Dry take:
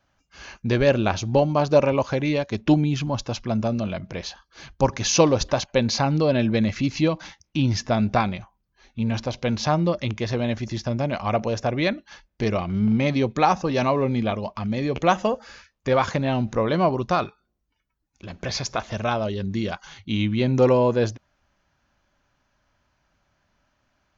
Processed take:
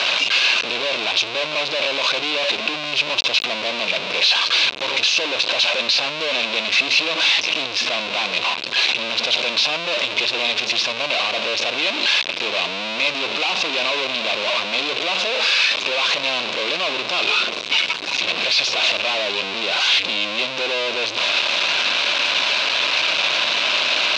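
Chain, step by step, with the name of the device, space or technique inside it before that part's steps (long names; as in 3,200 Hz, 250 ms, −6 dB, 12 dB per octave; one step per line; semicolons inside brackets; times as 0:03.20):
home computer beeper (sign of each sample alone; loudspeaker in its box 670–4,900 Hz, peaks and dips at 820 Hz −8 dB, 1,300 Hz −6 dB, 1,800 Hz −8 dB, 2,600 Hz +9 dB, 3,800 Hz +8 dB)
level +6.5 dB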